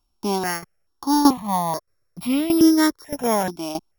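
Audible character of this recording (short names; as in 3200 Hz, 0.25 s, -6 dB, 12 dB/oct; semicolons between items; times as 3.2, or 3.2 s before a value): a buzz of ramps at a fixed pitch in blocks of 8 samples; tremolo saw down 1.6 Hz, depth 75%; notches that jump at a steady rate 2.3 Hz 500–1700 Hz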